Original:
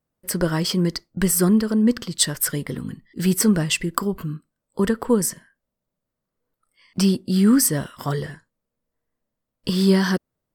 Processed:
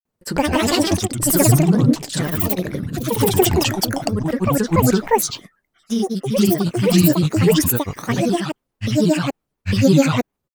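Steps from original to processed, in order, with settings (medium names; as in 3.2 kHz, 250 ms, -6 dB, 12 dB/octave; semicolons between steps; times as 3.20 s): granulator, grains 20 per s, pitch spread up and down by 12 st; ever faster or slower copies 207 ms, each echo +2 st, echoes 2; trim +4 dB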